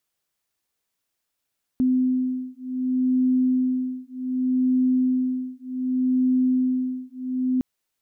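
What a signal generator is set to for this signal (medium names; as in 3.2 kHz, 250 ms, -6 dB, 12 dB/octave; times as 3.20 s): beating tones 255 Hz, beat 0.66 Hz, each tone -22.5 dBFS 5.81 s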